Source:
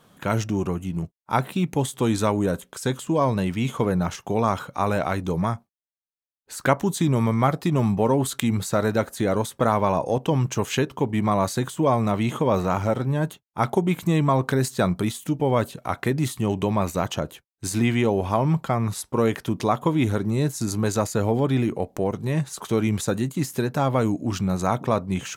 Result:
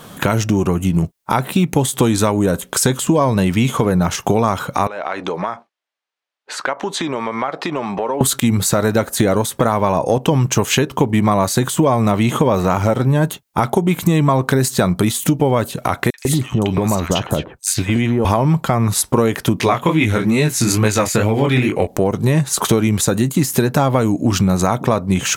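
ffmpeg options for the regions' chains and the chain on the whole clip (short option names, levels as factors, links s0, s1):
-filter_complex "[0:a]asettb=1/sr,asplit=3[s0][s1][s2];[s0]atrim=end=4.874[s3];[s1]atrim=start=4.87:end=8.21,asetpts=PTS-STARTPTS,afade=t=in:d=0.004:c=qsin,afade=t=out:st=3.336:d=0.004:c=qsin,highpass=490,lowpass=3300,acompressor=threshold=0.0141:ratio=4:attack=3.2:release=140:knee=1:detection=peak[s4];[s2]atrim=start=8.206[s5];[s3][s4]acrossfade=d=0.004:c1=hsin:c2=qsin[s6];[s6][s5]acrossfade=d=0.004:c1=qsin:c2=hsin,asettb=1/sr,asplit=3[s7][s8][s9];[s7]atrim=end=16.104[s10];[s8]atrim=start=16.1:end=18.25,asetpts=PTS-STARTPTS,afade=t=in:d=0.004:c=qsin,afade=t=out:st=2.146:d=0.004:c=qsin,highshelf=f=12000:g=-8.5,acompressor=threshold=0.0316:ratio=3:attack=3.2:release=140:knee=1:detection=peak,acrossover=split=1500|5200[s11][s12][s13];[s12]adelay=40[s14];[s11]adelay=150[s15];[s15][s14][s13]amix=inputs=3:normalize=0,atrim=end_sample=94815[s16];[s9]atrim=start=18.246[s17];[s10][s16]acrossfade=d=0.004:c1=hsin:c2=qsin[s18];[s18][s17]acrossfade=d=0.004:c1=qsin:c2=hsin,asettb=1/sr,asplit=3[s19][s20][s21];[s19]atrim=end=19.594[s22];[s20]atrim=start=19.59:end=21.87,asetpts=PTS-STARTPTS,afade=t=in:d=0.004:c=qsin,afade=t=out:st=2.276:d=0.004:c=qsin,equalizer=f=2300:t=o:w=1.1:g=10.5,flanger=delay=18.5:depth=6.3:speed=2.3[s23];[s21]atrim=start=21.866[s24];[s22][s23]acrossfade=d=0.004:c1=hsin:c2=qsin[s25];[s25][s24]acrossfade=d=0.004:c1=qsin:c2=hsin,highshelf=f=7500:g=4.5,acompressor=threshold=0.0316:ratio=6,alimiter=level_in=8.91:limit=0.891:release=50:level=0:latency=1,volume=0.891"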